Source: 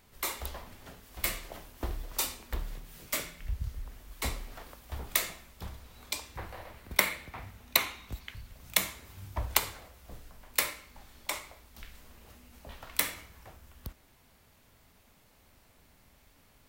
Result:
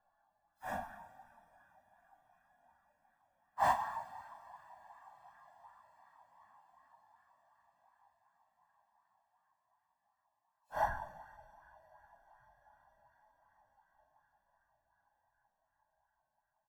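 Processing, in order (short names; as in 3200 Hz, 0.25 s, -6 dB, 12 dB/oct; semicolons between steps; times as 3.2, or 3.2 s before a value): Schmitt trigger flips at -19.5 dBFS; spectral gate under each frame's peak -30 dB strong; HPF 80 Hz 6 dB/oct; negative-ratio compressor -49 dBFS, ratio -1; band shelf 1000 Hz +14.5 dB; comb 1.2 ms, depth 86%; two-slope reverb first 0.42 s, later 3.2 s, from -18 dB, DRR 9 dB; Paulstretch 4.2×, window 0.05 s, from 10.42; LFO bell 2.7 Hz 460–1500 Hz +9 dB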